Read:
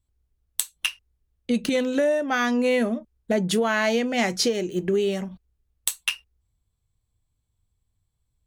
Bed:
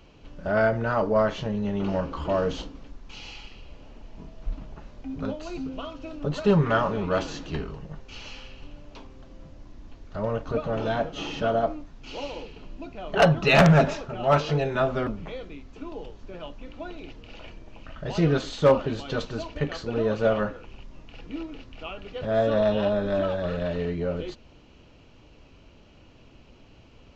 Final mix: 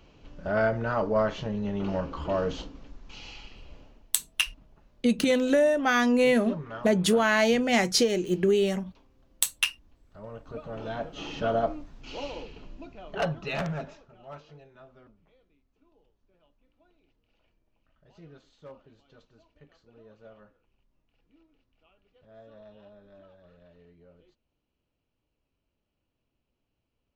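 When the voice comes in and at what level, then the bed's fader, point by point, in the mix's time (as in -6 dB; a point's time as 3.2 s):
3.55 s, 0.0 dB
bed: 3.78 s -3 dB
4.12 s -16.5 dB
10.1 s -16.5 dB
11.53 s -2 dB
12.56 s -2 dB
14.72 s -28.5 dB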